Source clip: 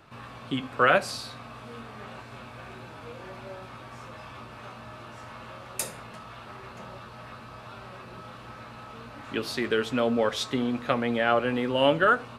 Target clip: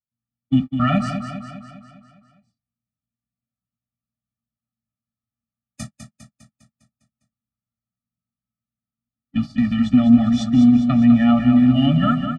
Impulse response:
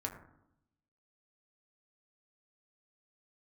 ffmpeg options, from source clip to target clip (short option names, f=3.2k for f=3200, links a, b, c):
-filter_complex "[0:a]agate=range=-59dB:threshold=-31dB:ratio=16:detection=peak,lowpass=f=8.1k:w=0.5412,lowpass=f=8.1k:w=1.3066,lowshelf=f=360:t=q:w=1.5:g=13,asplit=2[a][b];[b]asoftclip=type=tanh:threshold=-13dB,volume=-10dB[c];[a][c]amix=inputs=2:normalize=0,aecho=1:1:202|404|606|808|1010|1212|1414:0.398|0.219|0.12|0.0662|0.0364|0.02|0.011,afftfilt=real='re*eq(mod(floor(b*sr/1024/280),2),0)':imag='im*eq(mod(floor(b*sr/1024/280),2),0)':win_size=1024:overlap=0.75"